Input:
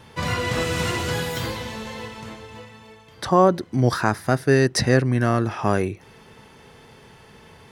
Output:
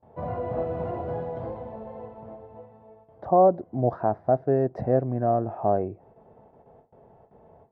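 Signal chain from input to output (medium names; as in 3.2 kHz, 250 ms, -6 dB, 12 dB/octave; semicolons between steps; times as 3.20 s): gate with hold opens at -38 dBFS; resonant low-pass 680 Hz, resonance Q 4.9; trim -8.5 dB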